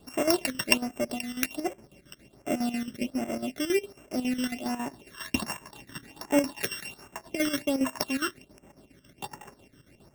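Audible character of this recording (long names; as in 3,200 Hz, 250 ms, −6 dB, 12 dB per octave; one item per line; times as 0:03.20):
a buzz of ramps at a fixed pitch in blocks of 16 samples
chopped level 7.3 Hz, depth 65%, duty 65%
phaser sweep stages 12, 1.3 Hz, lowest notch 750–4,300 Hz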